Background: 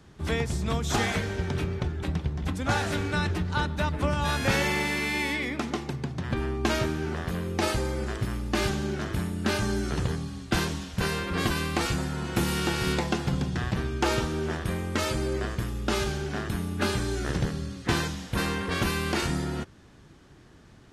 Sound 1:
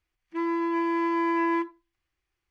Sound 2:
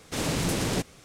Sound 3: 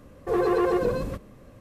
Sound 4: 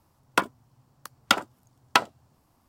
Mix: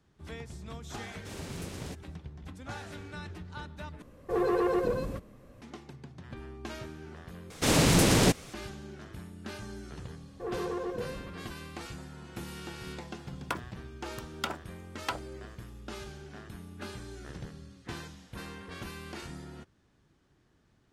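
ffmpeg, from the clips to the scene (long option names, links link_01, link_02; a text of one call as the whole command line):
ffmpeg -i bed.wav -i cue0.wav -i cue1.wav -i cue2.wav -i cue3.wav -filter_complex "[2:a]asplit=2[link_01][link_02];[3:a]asplit=2[link_03][link_04];[0:a]volume=-15dB[link_05];[link_02]acontrast=39[link_06];[link_04]acrossover=split=3100[link_07][link_08];[link_08]acompressor=threshold=-57dB:ratio=4:attack=1:release=60[link_09];[link_07][link_09]amix=inputs=2:normalize=0[link_10];[4:a]alimiter=limit=-13.5dB:level=0:latency=1:release=55[link_11];[link_05]asplit=3[link_12][link_13][link_14];[link_12]atrim=end=4.024[link_15];[link_03]atrim=end=1.6,asetpts=PTS-STARTPTS,volume=-4.5dB[link_16];[link_13]atrim=start=5.616:end=7.504[link_17];[link_06]atrim=end=1.04,asetpts=PTS-STARTPTS,volume=-0.5dB[link_18];[link_14]atrim=start=8.536[link_19];[link_01]atrim=end=1.04,asetpts=PTS-STARTPTS,volume=-15dB,afade=type=in:duration=0.004:curve=hsin,afade=type=out:start_time=1.036:duration=0.004:curve=hsin,adelay=1130[link_20];[link_10]atrim=end=1.6,asetpts=PTS-STARTPTS,volume=-12dB,afade=type=in:duration=0.004:curve=hsin,afade=type=out:start_time=1.596:duration=0.004:curve=hsin,adelay=10130[link_21];[link_11]atrim=end=2.68,asetpts=PTS-STARTPTS,volume=-5.5dB,afade=type=in:duration=0.004:curve=hsin,afade=type=out:start_time=2.676:duration=0.004:curve=hsin,adelay=13130[link_22];[link_15][link_16]acrossfade=duration=0.004:curve1=hsin:curve2=hsin[link_23];[link_23][link_17]acrossfade=duration=0.004:curve1=hsin:curve2=hsin[link_24];[link_24][link_18]acrossfade=duration=0.004:curve1=hsin:curve2=hsin[link_25];[link_25][link_19]acrossfade=duration=0.004:curve1=hsin:curve2=hsin[link_26];[link_26][link_20][link_21][link_22]amix=inputs=4:normalize=0" out.wav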